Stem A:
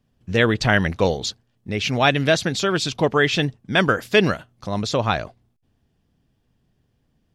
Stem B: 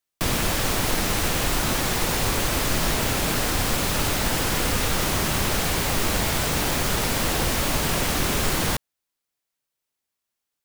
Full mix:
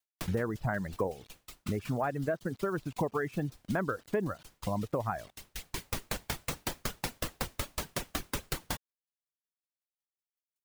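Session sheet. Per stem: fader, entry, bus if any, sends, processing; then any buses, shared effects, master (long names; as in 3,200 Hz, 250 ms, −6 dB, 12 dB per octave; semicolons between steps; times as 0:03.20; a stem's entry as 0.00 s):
+1.0 dB, 0.00 s, no send, low-pass filter 1,500 Hz 24 dB per octave; bit reduction 7 bits
−1.0 dB, 0.00 s, no send, tremolo with a ramp in dB decaying 5.4 Hz, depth 37 dB; automatic ducking −13 dB, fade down 0.70 s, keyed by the first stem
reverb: not used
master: reverb reduction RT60 2 s; downward compressor 5 to 1, threshold −30 dBFS, peak gain reduction 16.5 dB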